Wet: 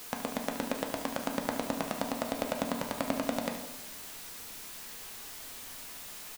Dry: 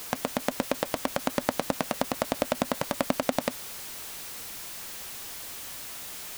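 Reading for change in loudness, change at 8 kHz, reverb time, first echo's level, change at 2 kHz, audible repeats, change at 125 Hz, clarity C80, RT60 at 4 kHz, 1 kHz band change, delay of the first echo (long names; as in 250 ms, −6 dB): −4.5 dB, −5.0 dB, 1.0 s, −12.0 dB, −4.5 dB, 1, −5.0 dB, 9.5 dB, 0.65 s, −4.5 dB, 73 ms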